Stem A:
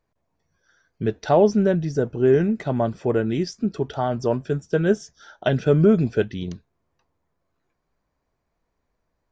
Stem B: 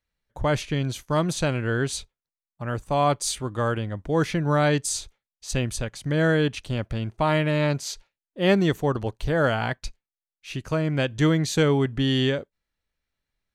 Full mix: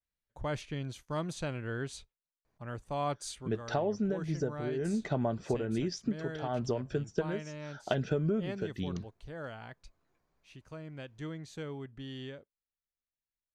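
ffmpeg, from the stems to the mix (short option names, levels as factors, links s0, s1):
-filter_complex "[0:a]acompressor=threshold=0.0562:ratio=12,adelay=2450,volume=0.794[s0];[1:a]lowpass=11000,adynamicequalizer=threshold=0.01:dfrequency=3300:dqfactor=0.7:tfrequency=3300:tqfactor=0.7:attack=5:release=100:ratio=0.375:range=2:mode=cutabove:tftype=highshelf,volume=0.251,afade=t=out:st=3.29:d=0.31:silence=0.375837,asplit=2[s1][s2];[s2]apad=whole_len=518824[s3];[s0][s3]sidechaincompress=threshold=0.00794:ratio=8:attack=6.7:release=157[s4];[s4][s1]amix=inputs=2:normalize=0"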